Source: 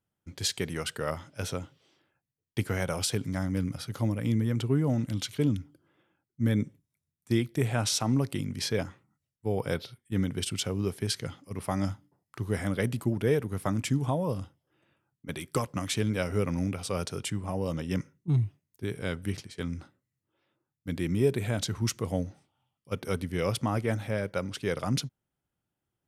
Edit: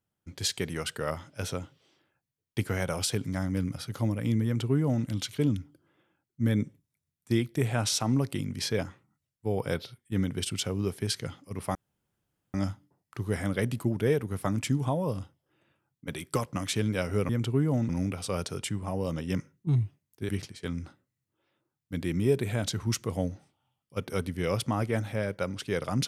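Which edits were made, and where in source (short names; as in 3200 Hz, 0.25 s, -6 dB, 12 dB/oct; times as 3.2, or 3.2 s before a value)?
4.45–5.05 copy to 16.5
11.75 insert room tone 0.79 s
18.9–19.24 cut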